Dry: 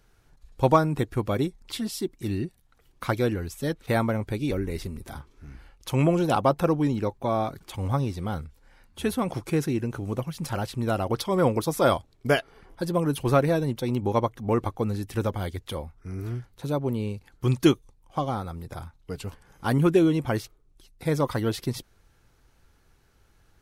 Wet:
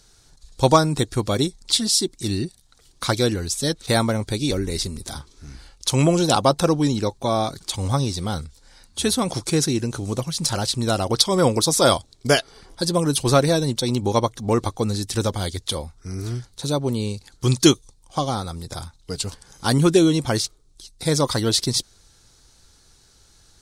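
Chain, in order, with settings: high-order bell 5.9 kHz +14.5 dB; trim +4 dB

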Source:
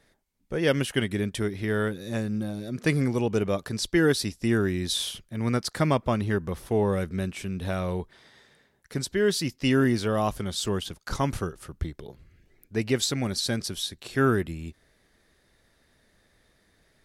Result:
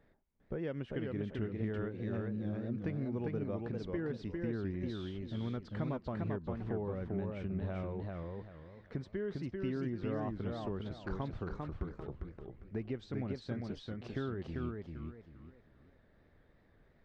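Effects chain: compression 4:1, threshold -35 dBFS, peak gain reduction 15 dB; tape spacing loss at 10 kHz 44 dB; modulated delay 397 ms, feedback 30%, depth 155 cents, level -3 dB; trim -1 dB

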